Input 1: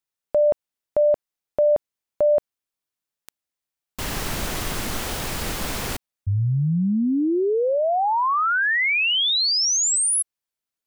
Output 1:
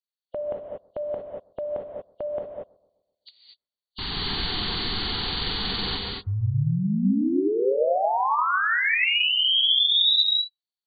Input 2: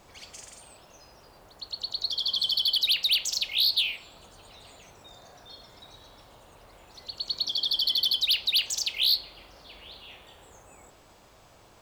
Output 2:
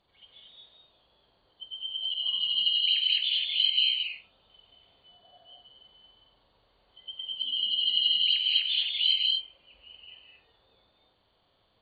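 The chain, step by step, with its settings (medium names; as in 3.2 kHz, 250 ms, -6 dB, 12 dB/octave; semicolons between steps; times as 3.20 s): knee-point frequency compression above 2.8 kHz 4:1; spectral noise reduction 13 dB; on a send: bucket-brigade echo 127 ms, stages 1024, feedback 48%, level -22 dB; on the sum: gated-style reverb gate 260 ms rising, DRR 0 dB; trim -5 dB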